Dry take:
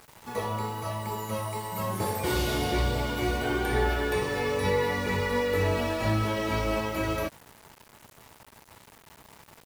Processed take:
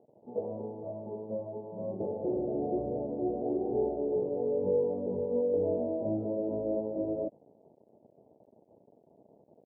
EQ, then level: high-pass 240 Hz 12 dB/octave; steep low-pass 680 Hz 48 dB/octave; 0.0 dB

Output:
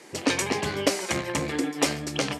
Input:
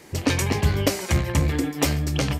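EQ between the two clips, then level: high-pass 260 Hz 12 dB/octave; low-pass 11 kHz 24 dB/octave; 0.0 dB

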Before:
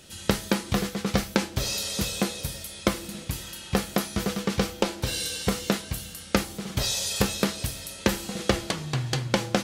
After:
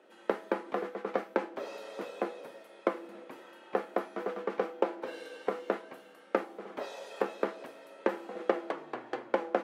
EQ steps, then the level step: high-pass 250 Hz 24 dB/octave; three-band isolator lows -18 dB, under 320 Hz, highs -23 dB, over 2.2 kHz; tilt shelf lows +5 dB, about 1.3 kHz; -4.0 dB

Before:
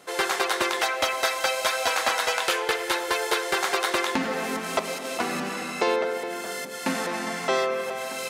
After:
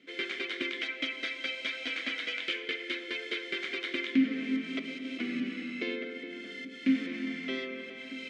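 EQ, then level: vowel filter i; distance through air 70 m; +6.5 dB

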